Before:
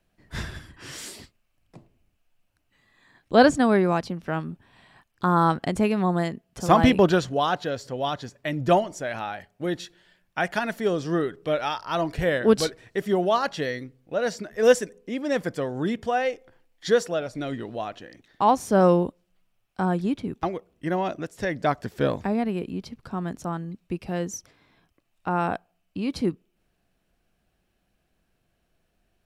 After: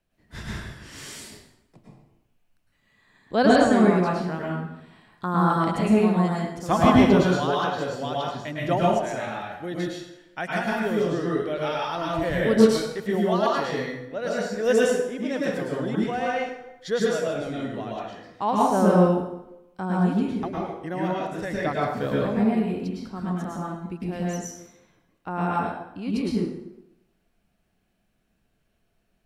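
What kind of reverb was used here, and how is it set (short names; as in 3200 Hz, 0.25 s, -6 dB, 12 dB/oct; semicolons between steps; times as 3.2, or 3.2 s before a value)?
plate-style reverb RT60 0.87 s, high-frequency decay 0.75×, pre-delay 95 ms, DRR -5 dB; gain -6 dB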